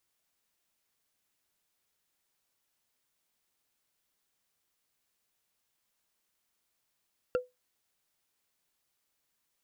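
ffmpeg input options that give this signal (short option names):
-f lavfi -i "aevalsrc='0.0841*pow(10,-3*t/0.19)*sin(2*PI*500*t)+0.0355*pow(10,-3*t/0.056)*sin(2*PI*1378.5*t)+0.015*pow(10,-3*t/0.025)*sin(2*PI*2702*t)+0.00631*pow(10,-3*t/0.014)*sin(2*PI*4466.5*t)+0.00266*pow(10,-3*t/0.008)*sin(2*PI*6670*t)':d=0.45:s=44100"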